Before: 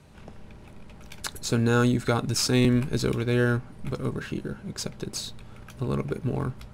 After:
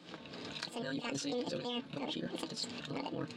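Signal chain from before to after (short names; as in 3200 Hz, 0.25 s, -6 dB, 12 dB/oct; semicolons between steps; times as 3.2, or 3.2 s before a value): trilling pitch shifter -10 st, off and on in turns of 0.329 s; recorder AGC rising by 8.1 dB/s; speaker cabinet 130–3100 Hz, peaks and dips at 200 Hz -9 dB, 390 Hz -7 dB, 640 Hz -5 dB, 940 Hz -6 dB, 1900 Hz +7 dB, 2900 Hz -6 dB; reverse; compressor 10:1, threshold -36 dBFS, peak gain reduction 15.5 dB; reverse; notch 500 Hz, Q 12; on a send: reverse echo 57 ms -11 dB; on the sum: speed mistake 7.5 ips tape played at 15 ips; flange 1.3 Hz, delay 5.6 ms, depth 1.7 ms, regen +62%; gain +5 dB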